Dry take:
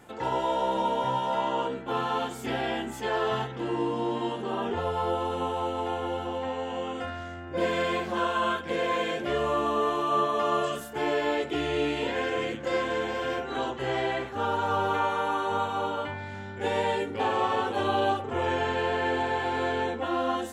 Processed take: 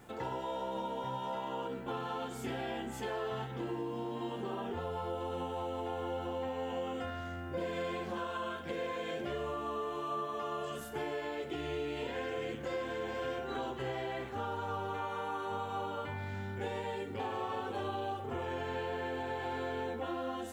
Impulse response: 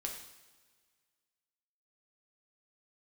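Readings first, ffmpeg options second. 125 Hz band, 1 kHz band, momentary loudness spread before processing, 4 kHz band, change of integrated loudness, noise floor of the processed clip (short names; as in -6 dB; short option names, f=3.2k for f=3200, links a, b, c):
-5.5 dB, -11.0 dB, 5 LU, -11.0 dB, -9.5 dB, -43 dBFS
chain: -filter_complex "[0:a]lowshelf=f=230:g=5,acompressor=threshold=-31dB:ratio=6,acrusher=bits=10:mix=0:aa=0.000001,asplit=2[a][b];[1:a]atrim=start_sample=2205[c];[b][c]afir=irnorm=-1:irlink=0,volume=-4.5dB[d];[a][d]amix=inputs=2:normalize=0,volume=-7.5dB"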